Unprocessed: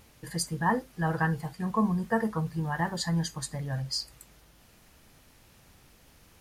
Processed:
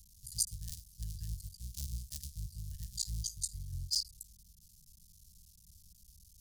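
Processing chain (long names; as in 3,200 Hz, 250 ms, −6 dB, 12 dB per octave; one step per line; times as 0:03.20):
sub-harmonics by changed cycles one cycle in 3, muted
inverse Chebyshev band-stop filter 360–1,200 Hz, stop band 80 dB
noise in a band 120–200 Hz −78 dBFS
level +3 dB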